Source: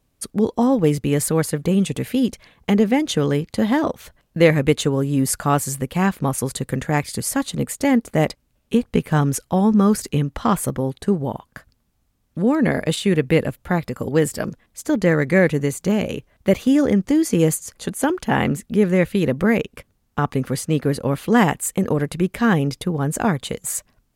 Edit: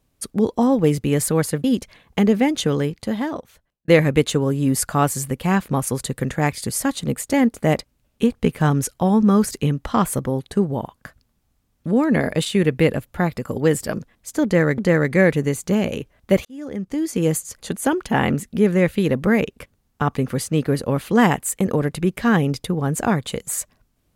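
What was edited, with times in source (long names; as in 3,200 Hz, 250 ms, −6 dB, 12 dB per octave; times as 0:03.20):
0:01.64–0:02.15: remove
0:03.11–0:04.39: fade out
0:14.95–0:15.29: repeat, 2 plays
0:16.62–0:17.71: fade in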